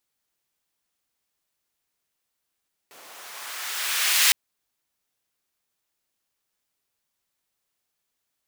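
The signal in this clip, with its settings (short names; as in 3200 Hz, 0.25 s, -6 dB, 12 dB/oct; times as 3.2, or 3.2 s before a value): swept filtered noise pink, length 1.41 s highpass, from 380 Hz, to 2300 Hz, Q 0.94, linear, gain ramp +35 dB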